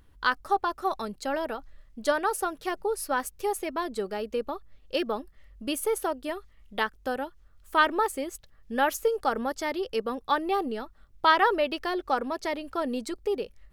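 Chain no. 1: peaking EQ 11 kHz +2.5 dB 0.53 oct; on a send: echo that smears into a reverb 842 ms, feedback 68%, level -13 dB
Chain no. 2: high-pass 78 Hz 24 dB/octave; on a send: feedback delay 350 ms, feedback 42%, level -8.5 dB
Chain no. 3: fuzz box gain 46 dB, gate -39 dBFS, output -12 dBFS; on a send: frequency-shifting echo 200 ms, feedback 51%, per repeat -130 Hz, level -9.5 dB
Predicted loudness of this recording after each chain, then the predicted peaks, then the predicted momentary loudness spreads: -28.5 LUFS, -28.5 LUFS, -17.0 LUFS; -7.5 dBFS, -8.5 dBFS, -7.0 dBFS; 11 LU, 10 LU, 6 LU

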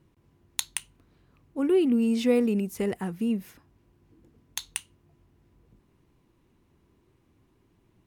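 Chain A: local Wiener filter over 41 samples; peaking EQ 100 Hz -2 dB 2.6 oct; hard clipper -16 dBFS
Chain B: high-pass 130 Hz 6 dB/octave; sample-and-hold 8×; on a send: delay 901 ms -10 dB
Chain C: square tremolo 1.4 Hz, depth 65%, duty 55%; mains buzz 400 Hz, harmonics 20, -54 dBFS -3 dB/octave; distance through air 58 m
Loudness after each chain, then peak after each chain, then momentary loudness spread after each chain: -29.0 LUFS, -29.0 LUFS, -29.0 LUFS; -16.0 dBFS, -8.5 dBFS, -11.5 dBFS; 15 LU, 19 LU, 18 LU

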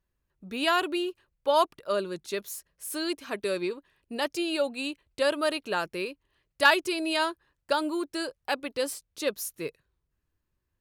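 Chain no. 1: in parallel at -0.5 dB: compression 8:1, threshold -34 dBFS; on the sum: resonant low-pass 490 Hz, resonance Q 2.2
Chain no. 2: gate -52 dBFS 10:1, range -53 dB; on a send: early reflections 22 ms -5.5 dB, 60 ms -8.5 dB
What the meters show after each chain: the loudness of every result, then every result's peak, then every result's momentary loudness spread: -26.0 LUFS, -28.0 LUFS; -10.0 dBFS, -6.5 dBFS; 9 LU, 11 LU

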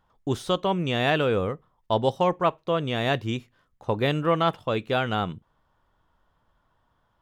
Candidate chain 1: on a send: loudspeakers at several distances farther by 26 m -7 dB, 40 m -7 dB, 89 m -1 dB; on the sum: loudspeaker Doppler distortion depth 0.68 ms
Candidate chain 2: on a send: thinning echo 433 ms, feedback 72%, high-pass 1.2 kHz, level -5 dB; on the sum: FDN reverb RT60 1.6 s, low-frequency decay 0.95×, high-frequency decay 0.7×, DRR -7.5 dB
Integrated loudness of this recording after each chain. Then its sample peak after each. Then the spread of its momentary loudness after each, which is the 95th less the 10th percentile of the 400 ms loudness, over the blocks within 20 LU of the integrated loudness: -22.5 LUFS, -16.5 LUFS; -6.5 dBFS, -1.5 dBFS; 10 LU, 15 LU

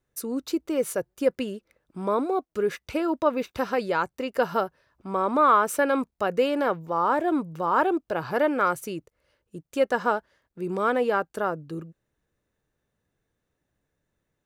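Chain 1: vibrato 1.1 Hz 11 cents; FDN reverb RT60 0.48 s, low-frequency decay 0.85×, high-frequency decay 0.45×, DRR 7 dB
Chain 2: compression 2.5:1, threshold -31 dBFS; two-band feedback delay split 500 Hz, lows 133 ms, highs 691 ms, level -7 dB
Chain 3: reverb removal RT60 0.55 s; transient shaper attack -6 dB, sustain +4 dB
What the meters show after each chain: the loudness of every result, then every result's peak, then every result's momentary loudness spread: -24.5 LUFS, -32.5 LUFS, -27.5 LUFS; -6.5 dBFS, -17.0 dBFS, -11.0 dBFS; 12 LU, 10 LU, 10 LU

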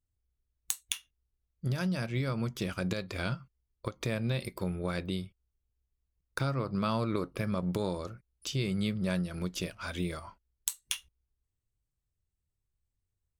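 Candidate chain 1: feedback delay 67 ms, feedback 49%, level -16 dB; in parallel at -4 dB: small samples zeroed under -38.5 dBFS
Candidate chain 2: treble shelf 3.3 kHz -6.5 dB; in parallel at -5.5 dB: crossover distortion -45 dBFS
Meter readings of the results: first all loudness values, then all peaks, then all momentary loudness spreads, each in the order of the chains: -30.0 LUFS, -32.0 LUFS; -9.0 dBFS, -13.5 dBFS; 8 LU, 10 LU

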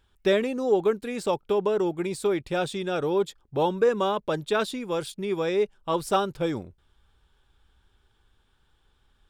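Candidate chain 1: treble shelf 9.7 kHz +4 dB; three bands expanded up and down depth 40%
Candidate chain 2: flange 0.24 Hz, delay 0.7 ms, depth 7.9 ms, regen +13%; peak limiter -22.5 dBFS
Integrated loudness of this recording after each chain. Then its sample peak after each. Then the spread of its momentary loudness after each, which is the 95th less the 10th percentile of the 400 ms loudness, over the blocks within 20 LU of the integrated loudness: -26.5 LUFS, -32.5 LUFS; -9.5 dBFS, -22.5 dBFS; 8 LU, 4 LU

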